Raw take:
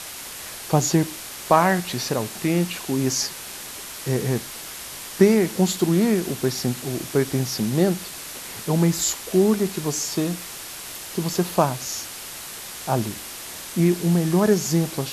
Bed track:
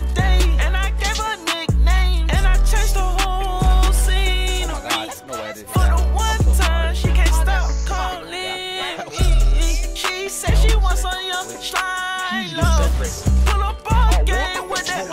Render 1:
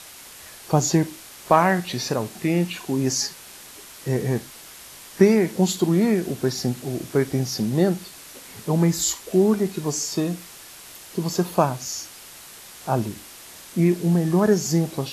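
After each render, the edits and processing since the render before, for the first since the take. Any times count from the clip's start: noise print and reduce 7 dB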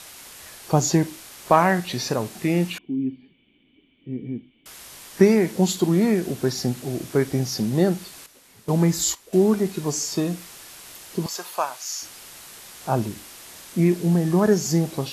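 2.78–4.66 vocal tract filter i; 8.26–9.33 gate -31 dBFS, range -11 dB; 11.26–12.02 HPF 920 Hz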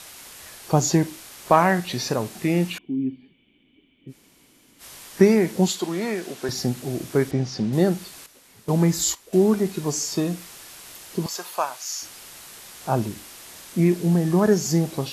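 4.1–4.81 room tone, crossfade 0.06 s; 5.68–6.49 weighting filter A; 7.31–7.73 air absorption 120 m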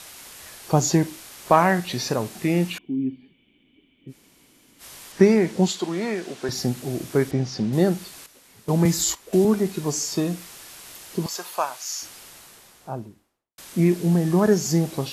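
5.12–6.52 Bessel low-pass 7600 Hz; 8.85–9.45 three-band squash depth 40%; 12–13.58 studio fade out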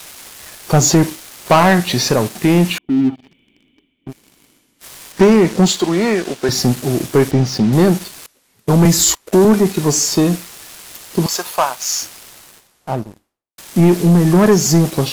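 reverse; upward compressor, threshold -40 dBFS; reverse; sample leveller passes 3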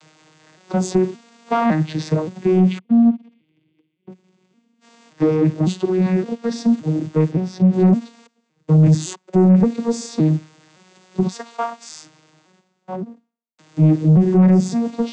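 arpeggiated vocoder minor triad, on D#3, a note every 0.566 s; soft clip -7 dBFS, distortion -15 dB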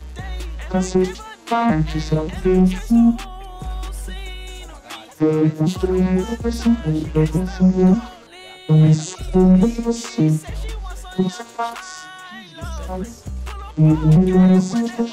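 add bed track -13.5 dB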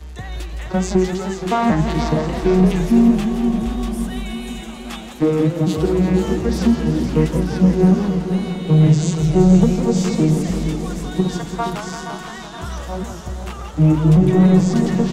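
feedback echo 0.471 s, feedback 53%, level -9.5 dB; warbling echo 0.169 s, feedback 77%, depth 186 cents, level -10 dB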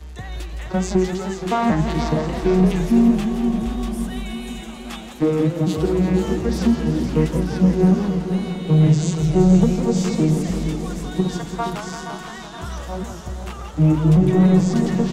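gain -2 dB

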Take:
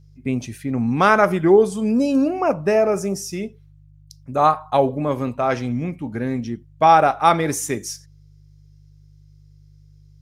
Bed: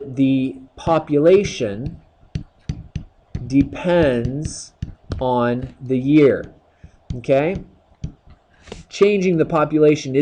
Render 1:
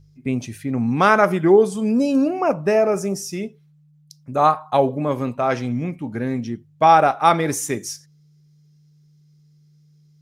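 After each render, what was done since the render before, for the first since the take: de-hum 50 Hz, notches 2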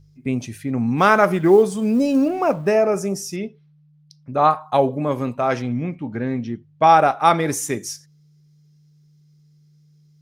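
0.98–2.7 G.711 law mismatch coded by mu; 3.36–4.51 polynomial smoothing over 15 samples; 5.62–6.84 LPF 4200 Hz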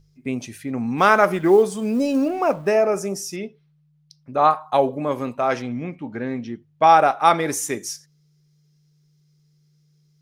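bell 95 Hz -8.5 dB 2.3 oct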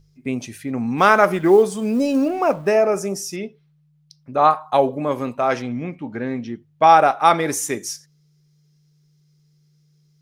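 gain +1.5 dB; limiter -1 dBFS, peak gain reduction 1 dB

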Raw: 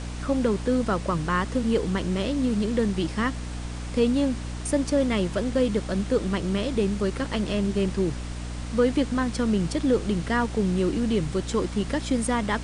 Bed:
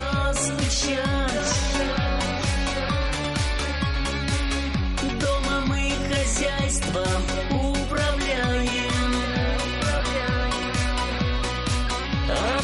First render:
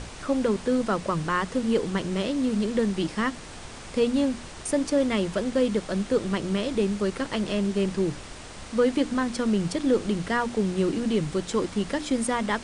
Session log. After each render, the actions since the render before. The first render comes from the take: notches 60/120/180/240/300 Hz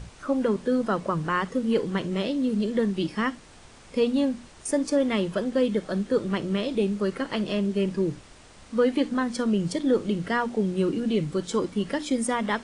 noise print and reduce 9 dB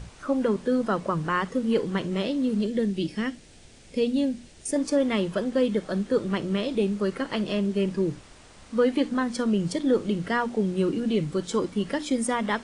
2.67–4.76 bell 1100 Hz -13 dB 1 oct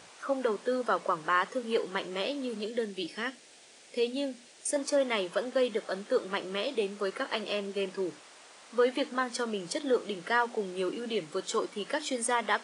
HPF 500 Hz 12 dB/oct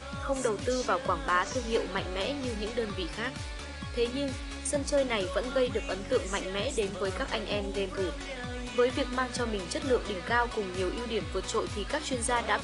add bed -14.5 dB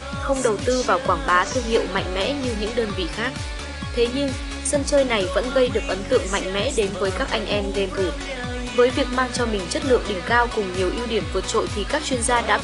gain +9 dB

